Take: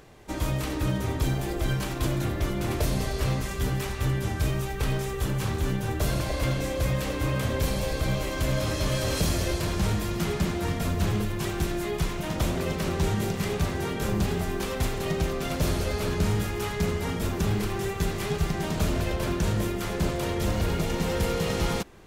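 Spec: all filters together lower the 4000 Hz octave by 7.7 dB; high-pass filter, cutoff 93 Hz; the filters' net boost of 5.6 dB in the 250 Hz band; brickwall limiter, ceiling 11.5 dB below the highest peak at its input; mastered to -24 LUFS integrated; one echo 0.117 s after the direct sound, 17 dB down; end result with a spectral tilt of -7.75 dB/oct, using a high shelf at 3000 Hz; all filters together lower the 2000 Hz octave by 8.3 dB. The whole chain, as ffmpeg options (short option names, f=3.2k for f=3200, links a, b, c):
-af "highpass=93,equalizer=f=250:t=o:g=8.5,equalizer=f=2k:t=o:g=-8.5,highshelf=f=3k:g=-4,equalizer=f=4k:t=o:g=-4,alimiter=limit=-23dB:level=0:latency=1,aecho=1:1:117:0.141,volume=7dB"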